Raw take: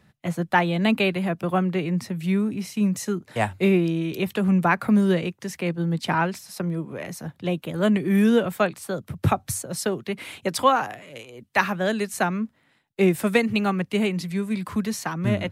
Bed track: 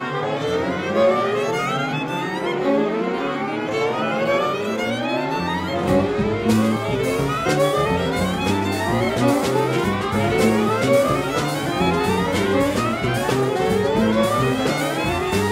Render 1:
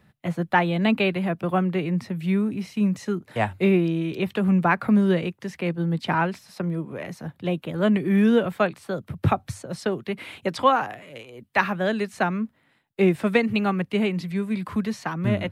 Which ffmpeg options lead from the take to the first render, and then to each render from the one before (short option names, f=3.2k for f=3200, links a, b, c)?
-filter_complex "[0:a]acrossover=split=6700[a][b];[b]acompressor=threshold=-55dB:ratio=4:attack=1:release=60[c];[a][c]amix=inputs=2:normalize=0,equalizer=f=6.3k:t=o:w=1.1:g=-6"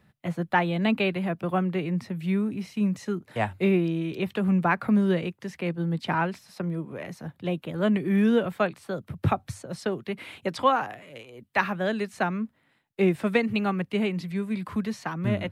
-af "volume=-3dB"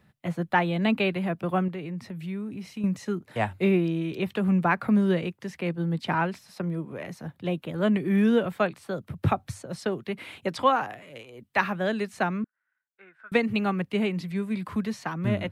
-filter_complex "[0:a]asettb=1/sr,asplit=3[a][b][c];[a]atrim=end=1.684[d];[b]atrim=start=1.68:end=2.84,asetpts=PTS-STARTPTS,afade=t=in:d=0.004:c=qsin,afade=t=out:st=1.156:d=0.004:c=qsin,acompressor=threshold=-36dB:ratio=2:attack=3.2:release=140:knee=1:detection=peak[e];[c]atrim=start=2.836[f];[d][e]acrossfade=d=0.004:c1=hsin:c2=qsin[g];[g][f]acrossfade=d=0.004:c1=qsin:c2=hsin,asettb=1/sr,asplit=3[h][i][j];[h]atrim=end=12.444[k];[i]atrim=start=12.44:end=13.32,asetpts=PTS-STARTPTS,afade=t=in:d=0.004:c=qsin,afade=t=out:st=0.876:d=0.004:c=qsin,bandpass=f=1.5k:t=q:w=13[l];[j]atrim=start=13.316[m];[k][l]acrossfade=d=0.004:c1=hsin:c2=qsin[n];[n][m]acrossfade=d=0.004:c1=qsin:c2=hsin"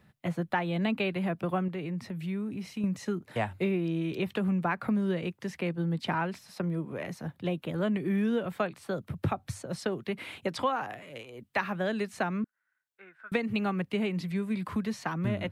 -af "acompressor=threshold=-27dB:ratio=3"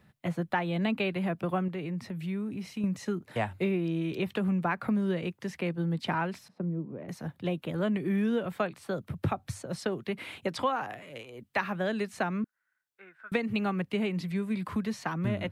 -filter_complex "[0:a]asettb=1/sr,asplit=3[a][b][c];[a]atrim=end=6.484[d];[b]atrim=start=6.48:end=7.09,asetpts=PTS-STARTPTS,afade=t=in:d=0.004:c=qsin,afade=t=out:st=0.606:d=0.004:c=qsin,bandpass=f=220:t=q:w=0.79[e];[c]atrim=start=7.086[f];[d][e]acrossfade=d=0.004:c1=hsin:c2=qsin[g];[g][f]acrossfade=d=0.004:c1=qsin:c2=hsin"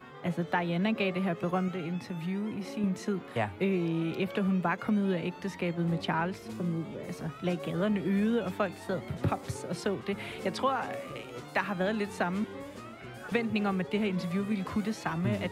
-filter_complex "[1:a]volume=-24dB[a];[0:a][a]amix=inputs=2:normalize=0"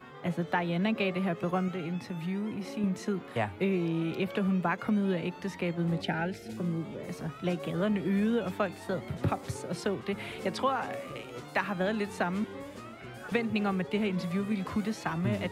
-filter_complex "[0:a]asettb=1/sr,asplit=3[a][b][c];[a]atrim=end=6.024[d];[b]atrim=start=6.02:end=6.57,asetpts=PTS-STARTPTS,afade=t=in:d=0.004:c=qsin,afade=t=out:st=0.546:d=0.004:c=qsin,asuperstop=centerf=1100:order=8:qfactor=2.4[e];[c]atrim=start=6.566[f];[d][e]acrossfade=d=0.004:c1=hsin:c2=qsin[g];[g][f]acrossfade=d=0.004:c1=qsin:c2=hsin"